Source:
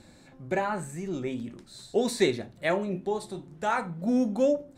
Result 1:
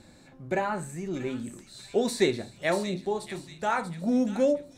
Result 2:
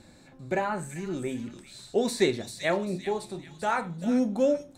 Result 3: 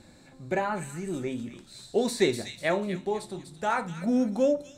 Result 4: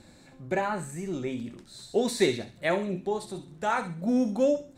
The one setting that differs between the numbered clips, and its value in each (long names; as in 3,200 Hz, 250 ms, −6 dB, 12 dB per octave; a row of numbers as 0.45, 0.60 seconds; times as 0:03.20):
delay with a high-pass on its return, delay time: 636, 392, 247, 66 milliseconds